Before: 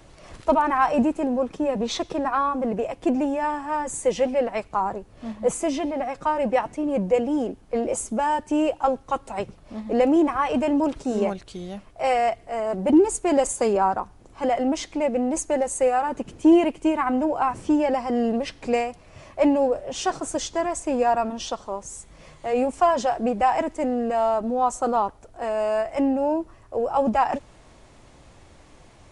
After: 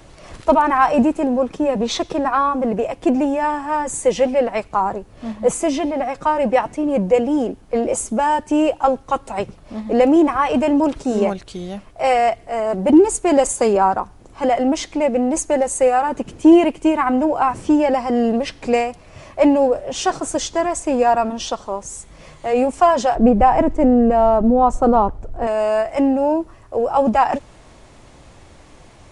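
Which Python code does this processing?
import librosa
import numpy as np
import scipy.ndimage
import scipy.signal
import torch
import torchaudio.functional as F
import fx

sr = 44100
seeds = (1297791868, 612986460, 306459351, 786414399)

y = fx.tilt_eq(x, sr, slope=-3.5, at=(23.15, 25.47))
y = F.gain(torch.from_numpy(y), 5.5).numpy()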